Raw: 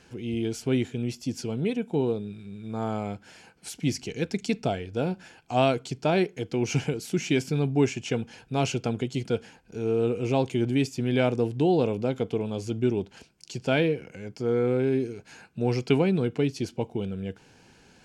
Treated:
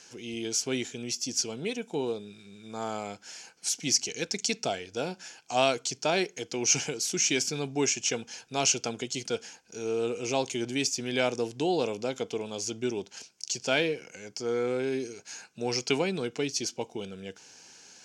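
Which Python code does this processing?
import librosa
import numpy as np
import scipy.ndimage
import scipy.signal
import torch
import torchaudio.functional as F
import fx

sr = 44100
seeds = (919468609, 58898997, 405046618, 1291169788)

y = fx.highpass(x, sr, hz=570.0, slope=6)
y = fx.peak_eq(y, sr, hz=6100.0, db=15.0, octaves=0.94)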